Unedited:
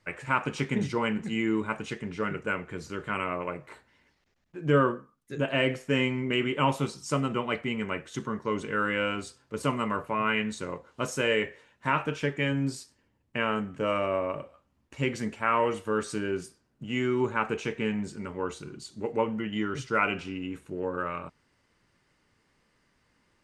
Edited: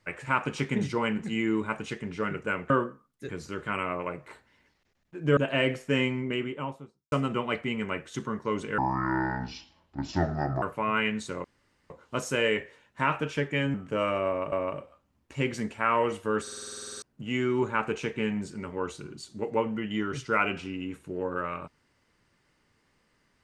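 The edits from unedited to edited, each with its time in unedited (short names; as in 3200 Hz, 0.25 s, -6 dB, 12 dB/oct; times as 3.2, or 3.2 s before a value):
4.78–5.37 move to 2.7
5.98–7.12 studio fade out
8.78–9.94 speed 63%
10.76 insert room tone 0.46 s
12.6–13.62 cut
14.14–14.4 loop, 2 plays
16.04 stutter in place 0.05 s, 12 plays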